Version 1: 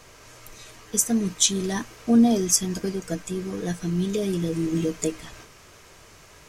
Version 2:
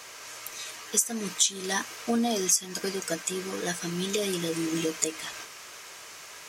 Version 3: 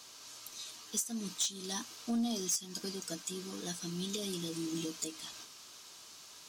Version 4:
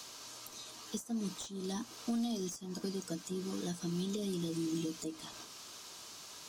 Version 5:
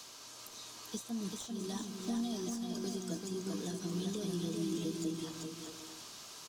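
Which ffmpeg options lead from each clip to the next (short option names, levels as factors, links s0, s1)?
-af "highpass=f=1200:p=1,acompressor=threshold=0.0282:ratio=4,volume=2.51"
-af "equalizer=f=250:t=o:w=1:g=6,equalizer=f=500:t=o:w=1:g=-7,equalizer=f=2000:t=o:w=1:g=-11,equalizer=f=4000:t=o:w=1:g=7,asoftclip=type=tanh:threshold=0.133,volume=0.376"
-filter_complex "[0:a]acrossover=split=370|1200[s0][s1][s2];[s0]acompressor=threshold=0.00891:ratio=4[s3];[s1]acompressor=threshold=0.00224:ratio=4[s4];[s2]acompressor=threshold=0.002:ratio=4[s5];[s3][s4][s5]amix=inputs=3:normalize=0,volume=2"
-af "aecho=1:1:390|624|764.4|848.6|899.2:0.631|0.398|0.251|0.158|0.1,volume=0.794"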